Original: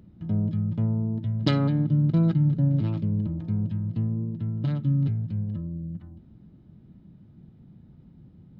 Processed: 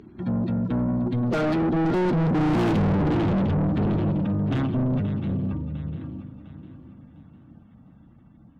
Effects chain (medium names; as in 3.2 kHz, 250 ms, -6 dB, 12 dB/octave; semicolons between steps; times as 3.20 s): coarse spectral quantiser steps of 30 dB; Doppler pass-by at 2.73 s, 32 m/s, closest 3.8 m; bass shelf 66 Hz +12 dB; shuffle delay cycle 703 ms, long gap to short 3:1, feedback 36%, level -15 dB; overdrive pedal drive 49 dB, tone 1.2 kHz, clips at -14.5 dBFS